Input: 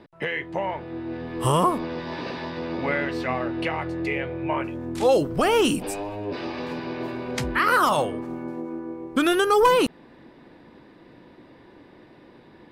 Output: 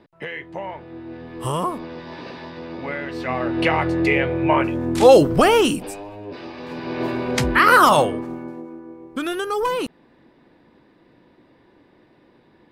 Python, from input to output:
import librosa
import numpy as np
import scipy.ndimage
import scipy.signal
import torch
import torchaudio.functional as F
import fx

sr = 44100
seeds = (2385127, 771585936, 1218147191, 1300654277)

y = fx.gain(x, sr, db=fx.line((3.02, -3.5), (3.7, 8.5), (5.33, 8.5), (6.0, -4.0), (6.59, -4.0), (7.05, 7.0), (7.98, 7.0), (8.77, -5.0)))